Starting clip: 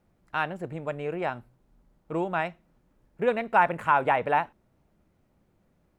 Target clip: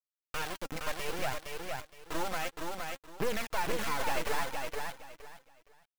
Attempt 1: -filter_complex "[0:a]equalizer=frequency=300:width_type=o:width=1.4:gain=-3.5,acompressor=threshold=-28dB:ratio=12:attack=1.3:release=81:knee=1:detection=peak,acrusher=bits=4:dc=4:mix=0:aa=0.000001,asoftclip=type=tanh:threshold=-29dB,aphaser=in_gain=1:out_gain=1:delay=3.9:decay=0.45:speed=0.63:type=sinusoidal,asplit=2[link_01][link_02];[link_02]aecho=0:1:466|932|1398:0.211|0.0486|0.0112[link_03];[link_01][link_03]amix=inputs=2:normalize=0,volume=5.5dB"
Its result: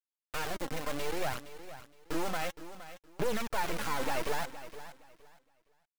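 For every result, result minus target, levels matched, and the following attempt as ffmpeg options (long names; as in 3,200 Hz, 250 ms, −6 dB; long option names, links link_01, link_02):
echo-to-direct −9.5 dB; 250 Hz band +2.0 dB
-filter_complex "[0:a]equalizer=frequency=300:width_type=o:width=1.4:gain=-3.5,acompressor=threshold=-28dB:ratio=12:attack=1.3:release=81:knee=1:detection=peak,acrusher=bits=4:dc=4:mix=0:aa=0.000001,asoftclip=type=tanh:threshold=-29dB,aphaser=in_gain=1:out_gain=1:delay=3.9:decay=0.45:speed=0.63:type=sinusoidal,asplit=2[link_01][link_02];[link_02]aecho=0:1:466|932|1398:0.631|0.145|0.0334[link_03];[link_01][link_03]amix=inputs=2:normalize=0,volume=5.5dB"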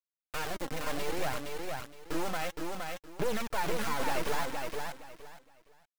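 250 Hz band +3.0 dB
-filter_complex "[0:a]equalizer=frequency=300:width_type=o:width=1.4:gain=-14,acompressor=threshold=-28dB:ratio=12:attack=1.3:release=81:knee=1:detection=peak,acrusher=bits=4:dc=4:mix=0:aa=0.000001,asoftclip=type=tanh:threshold=-29dB,aphaser=in_gain=1:out_gain=1:delay=3.9:decay=0.45:speed=0.63:type=sinusoidal,asplit=2[link_01][link_02];[link_02]aecho=0:1:466|932|1398:0.631|0.145|0.0334[link_03];[link_01][link_03]amix=inputs=2:normalize=0,volume=5.5dB"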